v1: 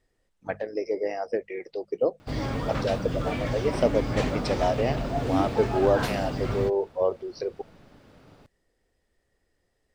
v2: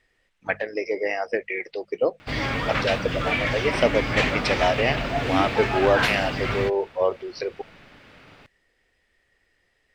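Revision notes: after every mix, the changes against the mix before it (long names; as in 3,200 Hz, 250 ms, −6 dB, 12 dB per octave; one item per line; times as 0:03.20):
master: add parametric band 2,300 Hz +14.5 dB 1.9 octaves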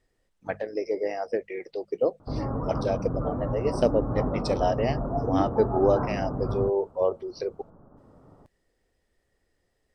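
background: add Butterworth low-pass 1,300 Hz 48 dB per octave
master: add parametric band 2,300 Hz −14.5 dB 1.9 octaves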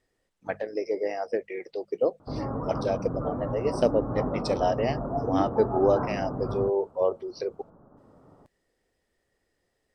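master: add low-shelf EQ 89 Hz −9 dB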